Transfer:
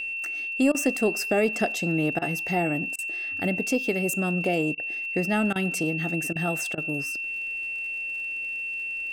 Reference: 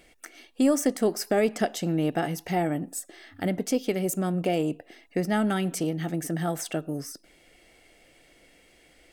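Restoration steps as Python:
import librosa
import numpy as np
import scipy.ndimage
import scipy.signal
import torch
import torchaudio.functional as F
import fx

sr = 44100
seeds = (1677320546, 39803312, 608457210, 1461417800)

y = fx.fix_declick_ar(x, sr, threshold=6.5)
y = fx.notch(y, sr, hz=2700.0, q=30.0)
y = fx.fix_interpolate(y, sr, at_s=(0.72, 2.19, 2.96, 4.75, 5.53, 6.33, 6.75), length_ms=25.0)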